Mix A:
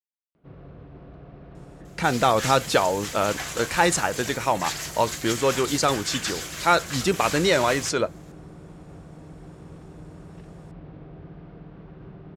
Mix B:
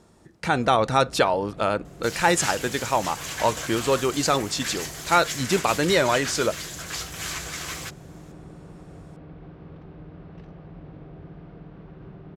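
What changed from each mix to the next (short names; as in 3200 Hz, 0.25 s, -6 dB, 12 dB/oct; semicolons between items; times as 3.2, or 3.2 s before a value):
speech: entry -1.55 s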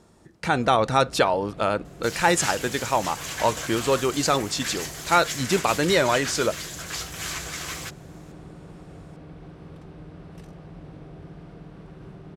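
first sound: remove air absorption 240 m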